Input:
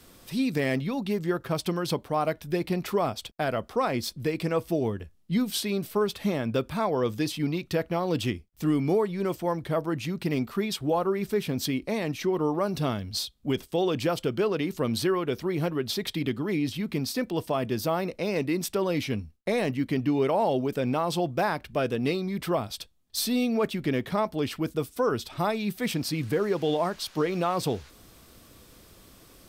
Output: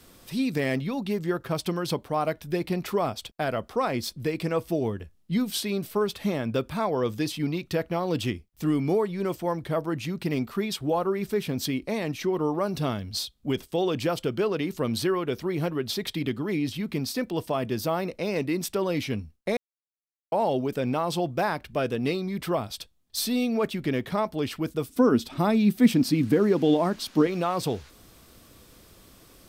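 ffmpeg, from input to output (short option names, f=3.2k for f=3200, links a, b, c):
-filter_complex "[0:a]asettb=1/sr,asplit=3[a][b][c];[a]atrim=end=24.894[d];[b]atrim=start=24.89:end=27.27,asetpts=PTS-STARTPTS,afade=t=in:d=0.004:c=qsin,afade=t=out:st=2.376:d=0.004:c=qsin,equalizer=f=250:t=o:w=0.77:g=14.5[e];[c]atrim=start=27.266[f];[d][e]acrossfade=d=0.004:c1=hsin:c2=qsin[g];[g][f]acrossfade=d=0.004:c1=qsin:c2=hsin,asplit=3[h][i][j];[h]atrim=end=19.57,asetpts=PTS-STARTPTS,afade=t=out:st=19.566:d=0.004:c=hsin[k];[i]atrim=start=19.57:end=20.32,asetpts=PTS-STARTPTS,volume=0[l];[j]atrim=start=20.32,asetpts=PTS-STARTPTS,afade=t=in:d=0.004:c=hsin[m];[k][l][m]concat=n=3:v=0:a=1"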